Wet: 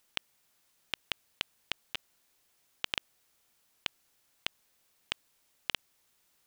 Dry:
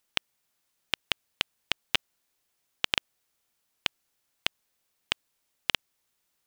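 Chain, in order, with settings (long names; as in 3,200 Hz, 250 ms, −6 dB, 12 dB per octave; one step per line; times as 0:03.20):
compressor whose output falls as the input rises −32 dBFS, ratio −1
level −1 dB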